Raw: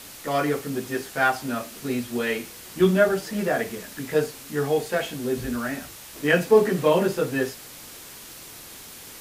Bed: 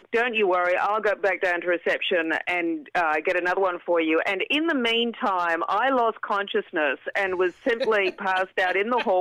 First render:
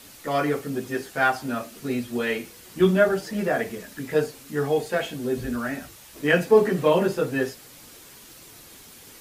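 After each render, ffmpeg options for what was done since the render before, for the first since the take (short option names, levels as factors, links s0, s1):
-af "afftdn=nr=6:nf=-43"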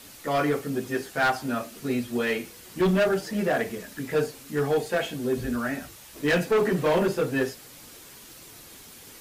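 -af "asoftclip=type=hard:threshold=0.126"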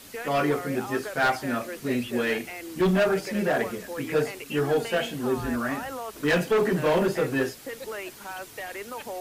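-filter_complex "[1:a]volume=0.2[s0];[0:a][s0]amix=inputs=2:normalize=0"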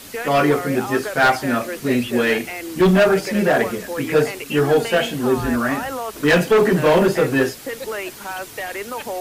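-af "volume=2.51"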